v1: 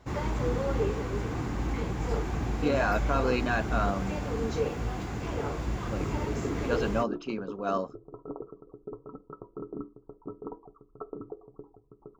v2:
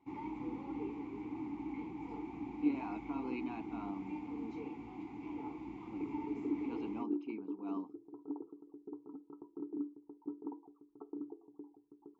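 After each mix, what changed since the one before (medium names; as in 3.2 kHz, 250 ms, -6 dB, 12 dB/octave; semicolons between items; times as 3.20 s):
second sound: add peaking EQ 480 Hz +6.5 dB 1.6 oct; master: add vowel filter u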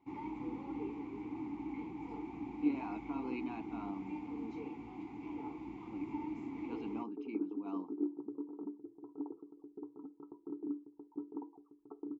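second sound: entry +0.90 s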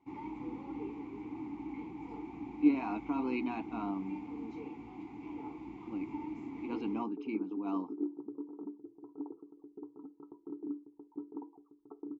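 speech +7.0 dB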